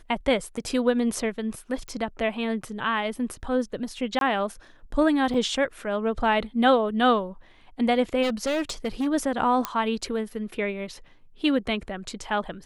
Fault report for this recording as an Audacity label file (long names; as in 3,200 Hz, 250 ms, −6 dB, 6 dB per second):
1.880000	1.880000	click −23 dBFS
4.190000	4.210000	drop-out 22 ms
5.340000	5.340000	drop-out 3.8 ms
8.220000	9.080000	clipping −22 dBFS
9.650000	9.650000	click −9 dBFS